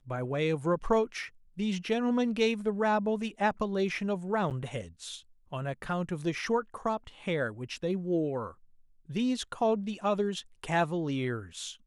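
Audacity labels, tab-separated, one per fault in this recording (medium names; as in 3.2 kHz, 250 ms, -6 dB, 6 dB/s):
4.500000	4.510000	dropout 8.6 ms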